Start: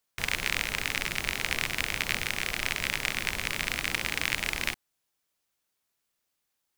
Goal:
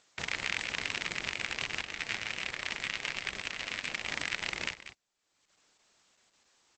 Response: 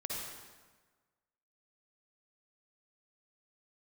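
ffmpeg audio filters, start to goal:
-filter_complex "[0:a]asettb=1/sr,asplit=3[a][b][c];[a]atrim=end=1.824[d];[b]atrim=start=1.82:end=4.08,asetpts=PTS-STARTPTS,afade=t=in:d=0.004:c=qsin,afade=t=out:st=2.256:d=0.004:c=qsin,flanger=delay=1.7:depth=8.2:regen=-43:speed=1.3:shape=sinusoidal[e];[c]atrim=start=4.076[f];[d][e]acrossfade=d=0.004:c1=hsin:c2=qsin[g];[g][f]acrossfade=d=0.004:c1=qsin:c2=hsin,aecho=1:1:189:0.2,alimiter=limit=-11dB:level=0:latency=1:release=312,highshelf=f=6.5k:g=-2.5,acompressor=mode=upward:threshold=-50dB:ratio=2.5,highpass=f=130:p=1" -ar 48000 -c:a libopus -b:a 10k

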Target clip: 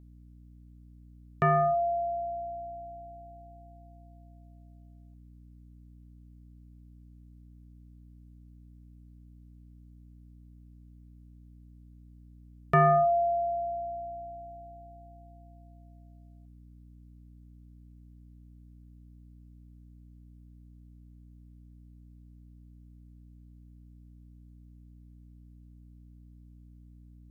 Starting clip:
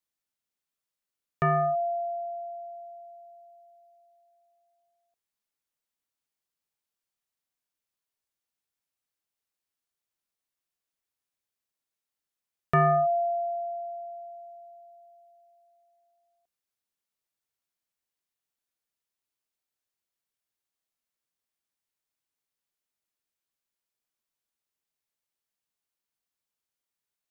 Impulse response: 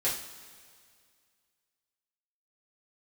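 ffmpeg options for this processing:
-filter_complex "[0:a]aeval=exprs='val(0)+0.00282*(sin(2*PI*60*n/s)+sin(2*PI*2*60*n/s)/2+sin(2*PI*3*60*n/s)/3+sin(2*PI*4*60*n/s)/4+sin(2*PI*5*60*n/s)/5)':c=same,asplit=2[a][b];[b]asplit=3[c][d][e];[c]bandpass=f=730:t=q:w=8,volume=0dB[f];[d]bandpass=f=1.09k:t=q:w=8,volume=-6dB[g];[e]bandpass=f=2.44k:t=q:w=8,volume=-9dB[h];[f][g][h]amix=inputs=3:normalize=0[i];[1:a]atrim=start_sample=2205,atrim=end_sample=3528[j];[i][j]afir=irnorm=-1:irlink=0,volume=-15dB[k];[a][k]amix=inputs=2:normalize=0"

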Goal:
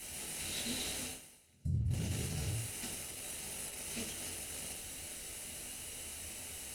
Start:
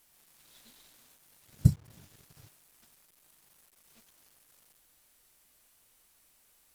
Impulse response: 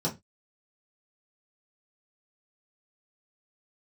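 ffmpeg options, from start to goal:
-filter_complex "[0:a]bass=f=250:g=-8,treble=f=4k:g=9[a];[1:a]atrim=start_sample=2205,asetrate=22491,aresample=44100[b];[a][b]afir=irnorm=-1:irlink=0,alimiter=limit=-2.5dB:level=0:latency=1,lowshelf=f=130:g=6,areverse,acompressor=threshold=-43dB:ratio=12,areverse,volume=9.5dB"

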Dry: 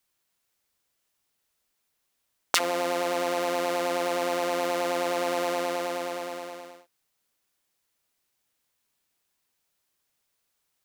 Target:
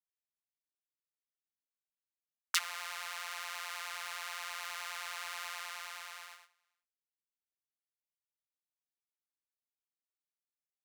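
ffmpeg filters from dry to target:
-af "agate=range=-24dB:threshold=-34dB:ratio=16:detection=peak,highpass=f=1.2k:w=0.5412,highpass=f=1.2k:w=1.3066,volume=-6.5dB"

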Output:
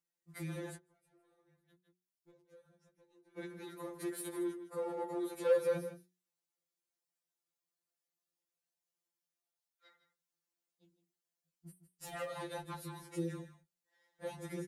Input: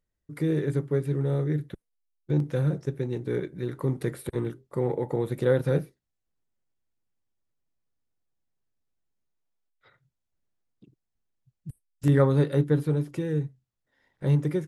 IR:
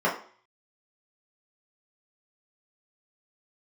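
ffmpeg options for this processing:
-filter_complex "[0:a]aeval=exprs='if(lt(val(0),0),0.708*val(0),val(0))':c=same,bass=f=250:g=-4,treble=f=4k:g=7,asoftclip=type=tanh:threshold=-22dB,highpass=f=170:p=1,aecho=1:1:158:0.251,asplit=3[a][b][c];[a]afade=t=out:st=0.75:d=0.02[d];[b]acompressor=threshold=-56dB:ratio=16,afade=t=in:st=0.75:d=0.02,afade=t=out:st=3.37:d=0.02[e];[c]afade=t=in:st=3.37:d=0.02[f];[d][e][f]amix=inputs=3:normalize=0,equalizer=f=230:w=1.8:g=-3.5,bandreject=f=60:t=h:w=6,bandreject=f=120:t=h:w=6,bandreject=f=180:t=h:w=6,bandreject=f=240:t=h:w=6,bandreject=f=300:t=h:w=6,bandreject=f=360:t=h:w=6,afftfilt=real='re*2.83*eq(mod(b,8),0)':imag='im*2.83*eq(mod(b,8),0)':win_size=2048:overlap=0.75,volume=-2.5dB"

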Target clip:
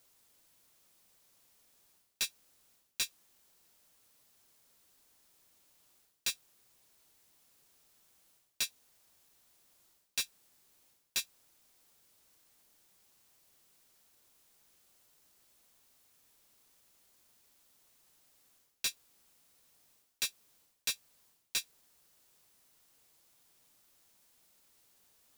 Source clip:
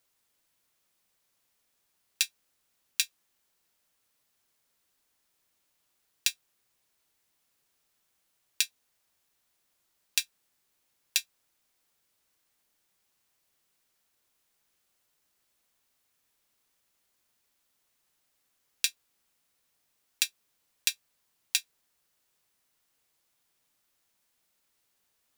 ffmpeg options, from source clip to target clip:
-af "equalizer=f=1.9k:t=o:w=1.9:g=-4,areverse,acompressor=threshold=-36dB:ratio=10,areverse,volume=34.5dB,asoftclip=hard,volume=-34.5dB,volume=8dB"

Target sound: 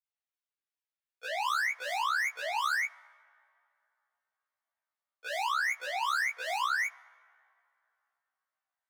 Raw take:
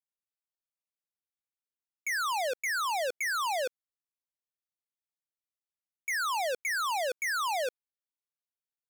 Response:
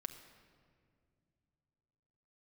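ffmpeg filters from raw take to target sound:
-filter_complex "[0:a]areverse,highpass=370,bandreject=f=520:w=17,acrossover=split=790|4000[a][b][c];[a]alimiter=level_in=15dB:limit=-24dB:level=0:latency=1,volume=-15dB[d];[b]acontrast=76[e];[c]tremolo=f=2.6:d=0.67[f];[d][e][f]amix=inputs=3:normalize=0,flanger=delay=1.4:depth=4.1:regen=-45:speed=0.26:shape=sinusoidal,asplit=2[g][h];[1:a]atrim=start_sample=2205,asetrate=29106,aresample=44100[i];[h][i]afir=irnorm=-1:irlink=0,volume=-14.5dB[j];[g][j]amix=inputs=2:normalize=0,afftfilt=real='re*1.73*eq(mod(b,3),0)':imag='im*1.73*eq(mod(b,3),0)':win_size=2048:overlap=0.75"

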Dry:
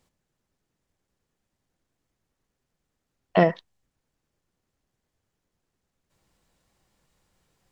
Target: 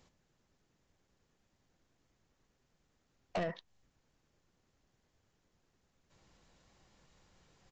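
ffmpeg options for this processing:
-af "acompressor=threshold=-29dB:ratio=8,aresample=16000,asoftclip=type=tanh:threshold=-34dB,aresample=44100,volume=3.5dB"

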